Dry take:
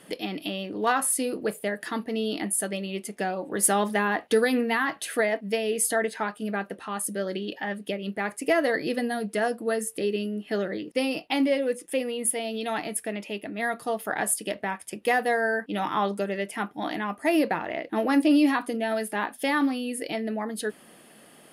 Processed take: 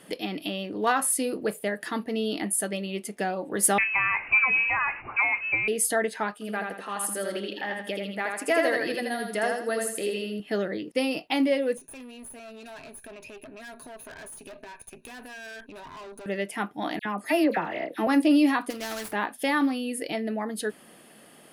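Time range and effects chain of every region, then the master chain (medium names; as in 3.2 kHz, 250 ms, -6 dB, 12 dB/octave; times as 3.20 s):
3.78–5.68 s: jump at every zero crossing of -32.5 dBFS + distance through air 350 m + frequency inversion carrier 2.8 kHz
6.33–10.40 s: bass shelf 310 Hz -9 dB + feedback delay 81 ms, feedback 37%, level -3.5 dB
11.77–16.26 s: rippled EQ curve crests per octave 1.5, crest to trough 16 dB + valve stage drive 30 dB, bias 0.7 + compression 10:1, threshold -40 dBFS
16.99–18.07 s: high-pass 110 Hz + phase dispersion lows, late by 62 ms, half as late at 2 kHz
18.70–19.13 s: median filter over 15 samples + spectrum-flattening compressor 2:1
whole clip: none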